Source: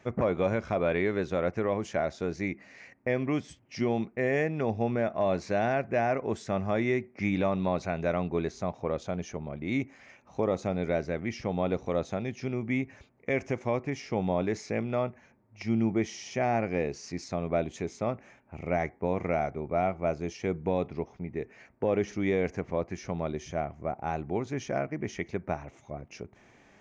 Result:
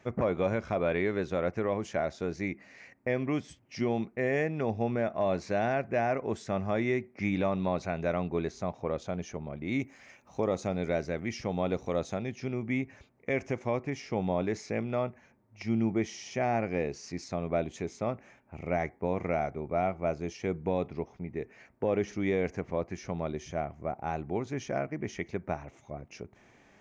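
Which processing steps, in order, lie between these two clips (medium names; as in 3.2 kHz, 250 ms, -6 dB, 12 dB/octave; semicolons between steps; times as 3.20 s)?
9.79–12.19 s: treble shelf 6.3 kHz +10 dB; trim -1.5 dB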